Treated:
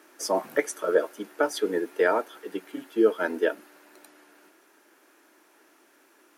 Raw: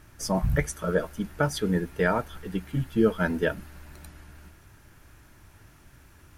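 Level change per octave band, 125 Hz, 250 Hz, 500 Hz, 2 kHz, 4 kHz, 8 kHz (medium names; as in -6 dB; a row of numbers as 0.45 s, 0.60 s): under -20 dB, -3.5 dB, +3.5 dB, 0.0 dB, 0.0 dB, +0.5 dB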